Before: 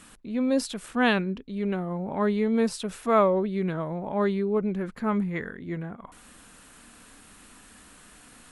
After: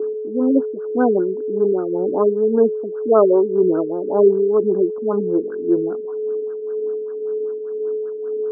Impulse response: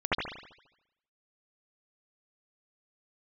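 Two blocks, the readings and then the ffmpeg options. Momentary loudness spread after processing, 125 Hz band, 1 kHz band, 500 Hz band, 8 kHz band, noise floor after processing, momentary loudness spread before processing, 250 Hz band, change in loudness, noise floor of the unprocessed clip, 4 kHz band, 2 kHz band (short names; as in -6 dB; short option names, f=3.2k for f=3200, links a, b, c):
10 LU, -2.0 dB, +2.0 dB, +12.5 dB, under -35 dB, -28 dBFS, 11 LU, +6.0 dB, +7.5 dB, -52 dBFS, under -40 dB, n/a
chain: -filter_complex "[0:a]aeval=exprs='val(0)+0.02*sin(2*PI*430*n/s)':c=same,acrossover=split=1000[a][b];[a]aeval=exprs='val(0)*(1-0.5/2+0.5/2*cos(2*PI*1.9*n/s))':c=same[c];[b]aeval=exprs='val(0)*(1-0.5/2-0.5/2*cos(2*PI*1.9*n/s))':c=same[d];[c][d]amix=inputs=2:normalize=0,asplit=2[e][f];[f]asoftclip=type=hard:threshold=-26dB,volume=-4.5dB[g];[e][g]amix=inputs=2:normalize=0,highpass=f=340:t=q:w=4.2,afftfilt=real='re*lt(b*sr/1024,430*pow(1700/430,0.5+0.5*sin(2*PI*5.1*pts/sr)))':imag='im*lt(b*sr/1024,430*pow(1700/430,0.5+0.5*sin(2*PI*5.1*pts/sr)))':win_size=1024:overlap=0.75,volume=3.5dB"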